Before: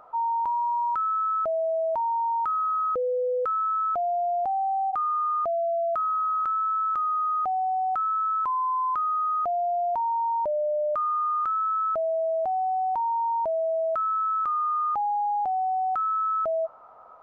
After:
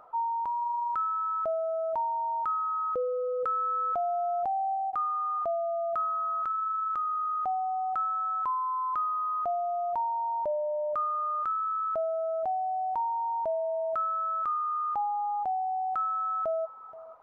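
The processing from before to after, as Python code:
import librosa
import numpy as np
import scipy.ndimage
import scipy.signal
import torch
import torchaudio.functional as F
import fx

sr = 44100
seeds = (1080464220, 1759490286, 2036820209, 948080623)

y = fx.dereverb_blind(x, sr, rt60_s=0.67)
y = y + 10.0 ** (-17.0 / 20.0) * np.pad(y, (int(477 * sr / 1000.0), 0))[:len(y)]
y = fx.env_flatten(y, sr, amount_pct=50, at=(3.39, 4.74), fade=0.02)
y = y * 10.0 ** (-2.5 / 20.0)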